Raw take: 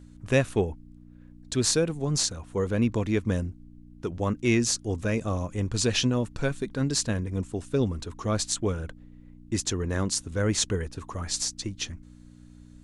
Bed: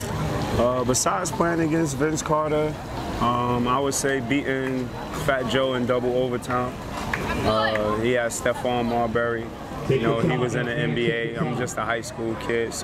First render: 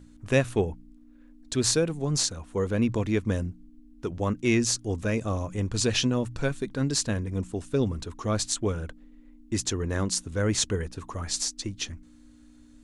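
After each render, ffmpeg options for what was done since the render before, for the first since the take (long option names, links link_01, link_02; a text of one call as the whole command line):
ffmpeg -i in.wav -af "bandreject=frequency=60:width_type=h:width=4,bandreject=frequency=120:width_type=h:width=4,bandreject=frequency=180:width_type=h:width=4" out.wav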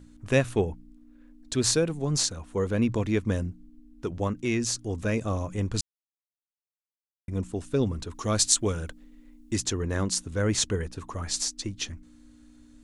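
ffmpeg -i in.wav -filter_complex "[0:a]asettb=1/sr,asplit=3[link_01][link_02][link_03];[link_01]atrim=end=4.274[link_04];[link_02]atrim=start=4.27:end=4.98,asetpts=PTS-STARTPTS,afade=type=in:duration=0.004:curve=qsin,afade=type=out:start_time=0.706:duration=0.004:curve=qsin,acompressor=threshold=-29dB:ratio=1.5:attack=3.2:release=140:knee=1:detection=peak[link_05];[link_03]atrim=start=4.976[link_06];[link_04][link_05]acrossfade=duration=0.004:curve1=hsin:curve2=qsin[link_07];[link_07][link_06]acrossfade=duration=0.004:curve1=qsin:curve2=hsin,asettb=1/sr,asplit=3[link_08][link_09][link_10];[link_08]atrim=end=8.144[link_11];[link_09]atrim=start=8.14:end=9.56,asetpts=PTS-STARTPTS,afade=type=in:duration=0.004:curve=qsin,afade=type=out:start_time=1.416:duration=0.004:curve=qsin,highshelf=frequency=3400:gain=9.5[link_12];[link_10]atrim=start=9.556[link_13];[link_11][link_12]acrossfade=duration=0.004:curve1=hsin:curve2=qsin[link_14];[link_14][link_13]acrossfade=duration=0.004:curve1=qsin:curve2=hsin,asplit=3[link_15][link_16][link_17];[link_15]atrim=end=5.81,asetpts=PTS-STARTPTS,afade=type=out:start_time=5.806:duration=0.004:curve=hsin[link_18];[link_16]atrim=start=5.81:end=7.28,asetpts=PTS-STARTPTS,volume=0[link_19];[link_17]atrim=start=7.28,asetpts=PTS-STARTPTS,afade=type=in:duration=0.004:curve=hsin[link_20];[link_18][link_19][link_20]concat=n=3:v=0:a=1" out.wav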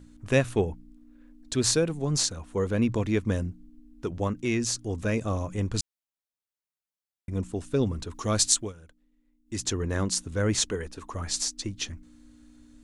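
ffmpeg -i in.wav -filter_complex "[0:a]asettb=1/sr,asplit=3[link_01][link_02][link_03];[link_01]atrim=end=10.614[link_04];[link_02]atrim=start=10.61:end=11.14,asetpts=PTS-STARTPTS,afade=type=in:duration=0.004:curve=qsin,afade=type=out:start_time=0.526:duration=0.004:curve=qsin,equalizer=frequency=120:width=1.5:gain=-13.5[link_05];[link_03]atrim=start=11.136[link_06];[link_04][link_05]acrossfade=duration=0.004:curve1=hsin:curve2=qsin[link_07];[link_07][link_06]acrossfade=duration=0.004:curve1=qsin:curve2=hsin,asplit=3[link_08][link_09][link_10];[link_08]atrim=end=8.73,asetpts=PTS-STARTPTS,afade=type=out:start_time=8.51:duration=0.22:silence=0.141254[link_11];[link_09]atrim=start=8.73:end=9.45,asetpts=PTS-STARTPTS,volume=-17dB[link_12];[link_10]atrim=start=9.45,asetpts=PTS-STARTPTS,afade=type=in:duration=0.22:silence=0.141254[link_13];[link_11][link_12][link_13]concat=n=3:v=0:a=1" out.wav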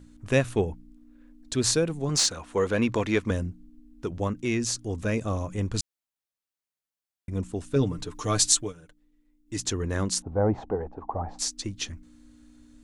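ffmpeg -i in.wav -filter_complex "[0:a]asettb=1/sr,asplit=3[link_01][link_02][link_03];[link_01]atrim=end=2.094[link_04];[link_02]atrim=start=2.09:end=3.31,asetpts=PTS-STARTPTS,afade=type=in:duration=0.004:curve=qsin,afade=type=out:start_time=1.216:duration=0.004:curve=qsin,asplit=2[link_05][link_06];[link_06]highpass=frequency=720:poles=1,volume=13dB,asoftclip=type=tanh:threshold=-8dB[link_07];[link_05][link_07]amix=inputs=2:normalize=0,lowpass=frequency=5000:poles=1,volume=-6dB[link_08];[link_03]atrim=start=3.306[link_09];[link_04][link_08]acrossfade=duration=0.004:curve1=hsin:curve2=qsin[link_10];[link_10][link_09]acrossfade=duration=0.004:curve1=qsin:curve2=hsin,asettb=1/sr,asplit=3[link_11][link_12][link_13];[link_11]atrim=end=7.754[link_14];[link_12]atrim=start=7.75:end=9.6,asetpts=PTS-STARTPTS,afade=type=in:duration=0.004:curve=qsin,afade=type=out:start_time=1.846:duration=0.004:curve=qsin,aecho=1:1:6.7:0.65,atrim=end_sample=81585[link_15];[link_13]atrim=start=9.596[link_16];[link_14][link_15]acrossfade=duration=0.004:curve1=hsin:curve2=qsin[link_17];[link_17][link_16]acrossfade=duration=0.004:curve1=qsin:curve2=hsin,asettb=1/sr,asplit=3[link_18][link_19][link_20];[link_18]atrim=end=10.224[link_21];[link_19]atrim=start=10.22:end=11.39,asetpts=PTS-STARTPTS,afade=type=in:duration=0.004:curve=qsin,afade=type=out:start_time=1.166:duration=0.004:curve=qsin,lowpass=frequency=790:width_type=q:width=8.9[link_22];[link_20]atrim=start=11.386[link_23];[link_21][link_22]acrossfade=duration=0.004:curve1=hsin:curve2=qsin[link_24];[link_24][link_23]acrossfade=duration=0.004:curve1=qsin:curve2=hsin" out.wav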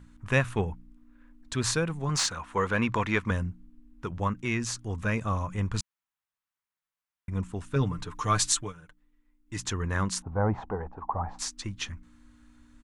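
ffmpeg -i in.wav -af "firequalizer=gain_entry='entry(190,0);entry(280,-7);entry(660,-4);entry(980,6);entry(4400,-5)':delay=0.05:min_phase=1" out.wav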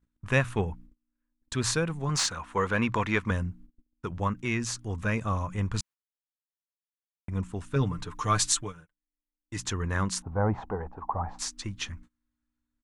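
ffmpeg -i in.wav -af "agate=range=-27dB:threshold=-47dB:ratio=16:detection=peak" out.wav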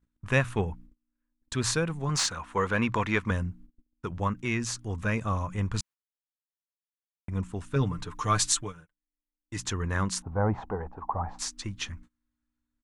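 ffmpeg -i in.wav -af anull out.wav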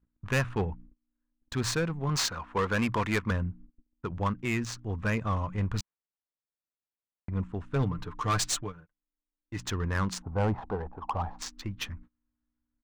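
ffmpeg -i in.wav -af "asoftclip=type=hard:threshold=-21.5dB,adynamicsmooth=sensitivity=6.5:basefreq=2000" out.wav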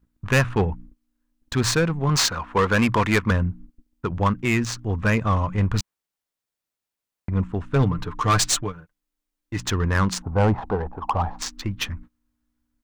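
ffmpeg -i in.wav -af "volume=8.5dB" out.wav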